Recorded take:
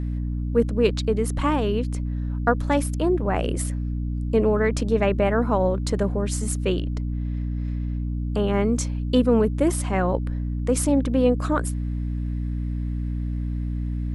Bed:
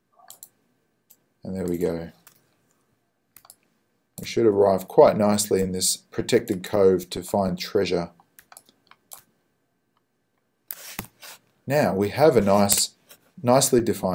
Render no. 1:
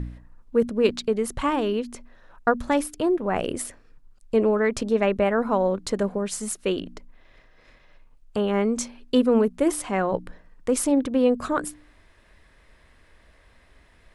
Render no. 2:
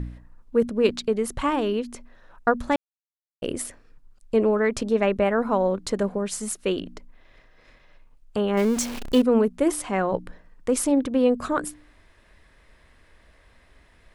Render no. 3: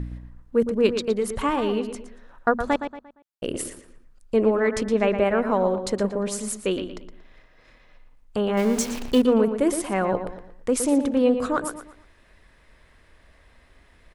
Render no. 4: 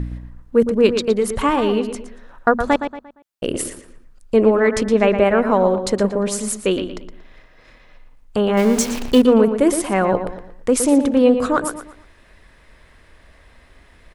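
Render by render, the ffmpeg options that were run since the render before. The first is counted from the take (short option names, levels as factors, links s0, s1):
-af "bandreject=f=60:t=h:w=4,bandreject=f=120:t=h:w=4,bandreject=f=180:t=h:w=4,bandreject=f=240:t=h:w=4,bandreject=f=300:t=h:w=4"
-filter_complex "[0:a]asettb=1/sr,asplit=3[s0][s1][s2];[s0]atrim=end=8.574[s3];[s1]atrim=start=8.57:end=9.22,asetpts=PTS-STARTPTS,afade=t=in:d=0.004:c=qsin,afade=t=out:st=0.646:d=0.004:c=qsin,aeval=exprs='val(0)+0.5*0.0398*sgn(val(0))':c=same[s4];[s2]atrim=start=9.216[s5];[s3][s4]acrossfade=d=0.004:c1=hsin:c2=qsin[s6];[s6][s5]acrossfade=d=0.004:c1=qsin:c2=hsin,asplit=3[s7][s8][s9];[s7]atrim=end=2.76,asetpts=PTS-STARTPTS,afade=t=out:st=2.756:d=0.004:c=hsin[s10];[s8]atrim=start=2.76:end=3.42,asetpts=PTS-STARTPTS,volume=0[s11];[s9]atrim=start=3.42,asetpts=PTS-STARTPTS,afade=t=in:d=0.004:c=hsin[s12];[s10][s11][s12]concat=n=3:v=0:a=1"
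-filter_complex "[0:a]asplit=2[s0][s1];[s1]adelay=116,lowpass=f=4200:p=1,volume=0.376,asplit=2[s2][s3];[s3]adelay=116,lowpass=f=4200:p=1,volume=0.36,asplit=2[s4][s5];[s5]adelay=116,lowpass=f=4200:p=1,volume=0.36,asplit=2[s6][s7];[s7]adelay=116,lowpass=f=4200:p=1,volume=0.36[s8];[s0][s2][s4][s6][s8]amix=inputs=5:normalize=0"
-af "volume=2,alimiter=limit=0.794:level=0:latency=1"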